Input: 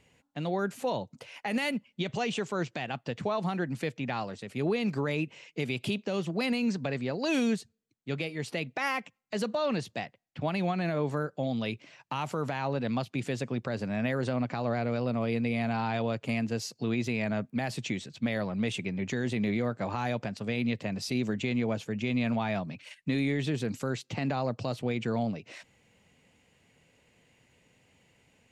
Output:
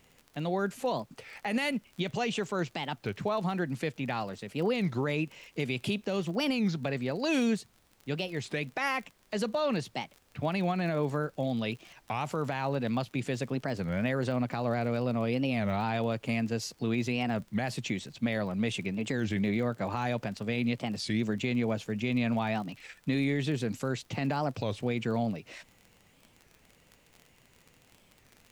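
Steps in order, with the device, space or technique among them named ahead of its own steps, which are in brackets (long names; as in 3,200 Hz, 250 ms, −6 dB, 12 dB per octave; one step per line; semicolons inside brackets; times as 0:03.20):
warped LP (wow of a warped record 33 1/3 rpm, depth 250 cents; surface crackle 38 per second −40 dBFS; pink noise bed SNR 35 dB)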